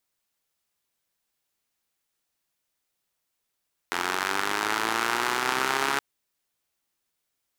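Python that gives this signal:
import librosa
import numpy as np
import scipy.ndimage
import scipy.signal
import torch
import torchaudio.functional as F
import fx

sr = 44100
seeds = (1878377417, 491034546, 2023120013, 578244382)

y = fx.engine_four_rev(sr, seeds[0], length_s=2.07, rpm=2600, resonances_hz=(390.0, 910.0, 1300.0), end_rpm=4200)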